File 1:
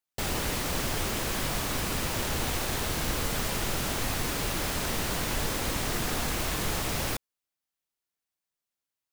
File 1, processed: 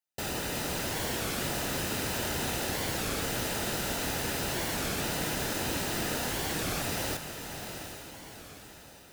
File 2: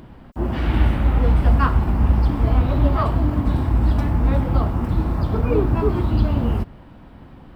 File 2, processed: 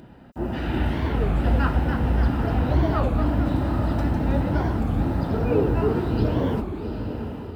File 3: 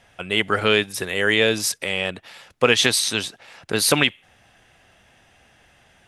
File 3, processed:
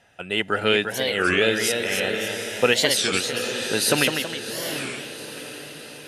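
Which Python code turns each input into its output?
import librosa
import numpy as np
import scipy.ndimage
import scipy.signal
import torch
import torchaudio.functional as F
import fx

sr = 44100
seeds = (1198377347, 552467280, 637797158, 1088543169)

p1 = fx.notch_comb(x, sr, f0_hz=1100.0)
p2 = p1 + fx.echo_diffused(p1, sr, ms=782, feedback_pct=47, wet_db=-8.0, dry=0)
p3 = fx.echo_pitch(p2, sr, ms=376, semitones=1, count=2, db_per_echo=-6.0)
p4 = fx.record_warp(p3, sr, rpm=33.33, depth_cents=250.0)
y = F.gain(torch.from_numpy(p4), -2.0).numpy()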